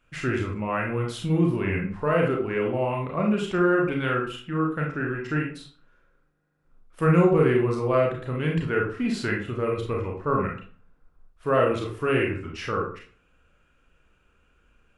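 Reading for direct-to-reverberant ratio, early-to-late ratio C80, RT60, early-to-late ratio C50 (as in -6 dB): -1.5 dB, 10.0 dB, 0.40 s, 5.5 dB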